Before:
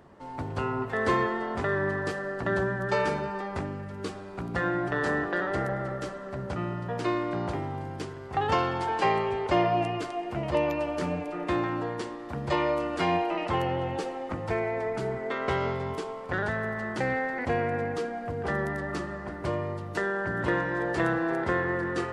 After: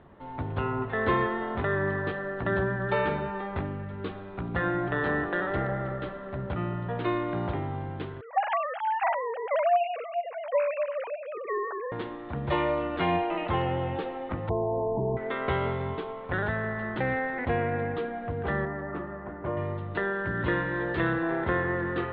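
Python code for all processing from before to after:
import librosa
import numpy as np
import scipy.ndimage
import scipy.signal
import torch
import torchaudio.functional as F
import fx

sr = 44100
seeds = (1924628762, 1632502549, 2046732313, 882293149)

y = fx.chain(x, sr, fx.sine_speech(),
    fx.highpass(hz=260.0, slope=6), at=(8.21, 11.92))
y = fx.chain(y, sr, fx.brickwall_lowpass(high_hz=1100.0),
    fx.env_flatten(amount_pct=70), at=(14.49, 15.17))
y = fx.chain(y, sr, fx.lowpass(hz=1500.0, slope=12),
    fx.low_shelf(hz=140.0, db=-9.0), at=(18.65, 19.57))
y = fx.chain(y, sr, fx.lowpass_res(hz=6500.0, q=5.3),
    fx.peak_eq(hz=740.0, db=-5.5, octaves=0.64), at=(20.13, 21.23))
y = scipy.signal.sosfilt(scipy.signal.ellip(4, 1.0, 40, 3700.0, 'lowpass', fs=sr, output='sos'), y)
y = fx.low_shelf(y, sr, hz=110.0, db=7.0)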